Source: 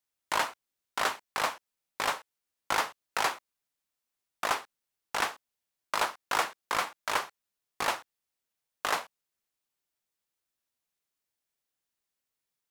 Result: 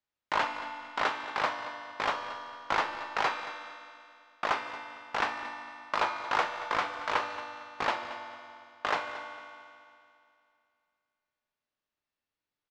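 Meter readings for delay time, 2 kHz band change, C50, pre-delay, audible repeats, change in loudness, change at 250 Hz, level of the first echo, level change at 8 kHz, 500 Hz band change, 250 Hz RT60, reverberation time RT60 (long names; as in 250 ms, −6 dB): 227 ms, +0.5 dB, 6.0 dB, 3 ms, 1, −1.0 dB, +2.5 dB, −15.0 dB, −12.5 dB, +1.5 dB, 2.5 s, 2.5 s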